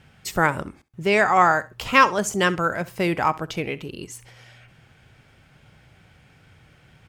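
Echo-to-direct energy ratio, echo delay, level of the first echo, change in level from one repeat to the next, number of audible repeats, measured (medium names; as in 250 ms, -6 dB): -19.5 dB, 66 ms, -19.5 dB, -15.0 dB, 2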